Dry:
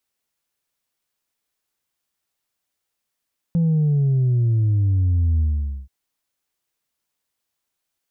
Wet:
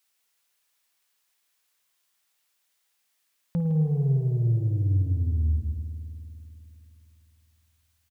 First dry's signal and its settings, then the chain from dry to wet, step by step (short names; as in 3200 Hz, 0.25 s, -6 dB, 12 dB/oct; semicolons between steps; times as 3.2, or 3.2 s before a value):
sub drop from 170 Hz, over 2.33 s, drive 1.5 dB, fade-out 0.48 s, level -15.5 dB
tilt shelf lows -7 dB, about 670 Hz; speakerphone echo 0.16 s, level -8 dB; spring tank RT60 3.2 s, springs 51 ms, chirp 35 ms, DRR 5.5 dB